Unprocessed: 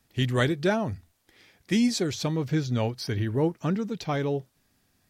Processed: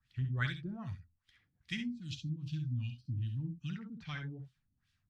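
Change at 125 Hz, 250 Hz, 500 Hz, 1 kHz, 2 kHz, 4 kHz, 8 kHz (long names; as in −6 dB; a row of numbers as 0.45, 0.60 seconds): −8.0 dB, −15.5 dB, below −25 dB, below −15 dB, −9.0 dB, −13.0 dB, below −20 dB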